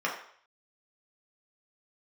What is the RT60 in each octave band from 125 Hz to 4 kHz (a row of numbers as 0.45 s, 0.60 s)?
0.40 s, 0.45 s, 0.55 s, 0.60 s, 0.60 s, 0.55 s